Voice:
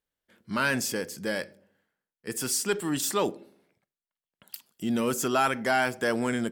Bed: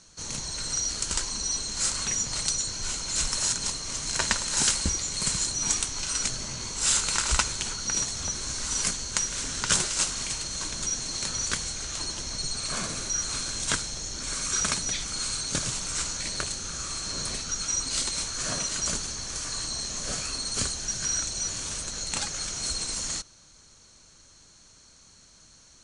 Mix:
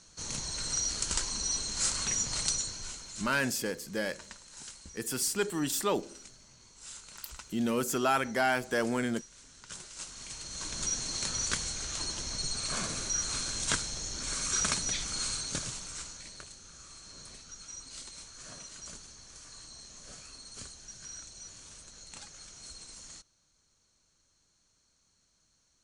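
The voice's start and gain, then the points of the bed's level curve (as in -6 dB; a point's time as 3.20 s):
2.70 s, -3.0 dB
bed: 2.53 s -3 dB
3.53 s -23 dB
9.65 s -23 dB
10.82 s -3 dB
15.26 s -3 dB
16.44 s -17 dB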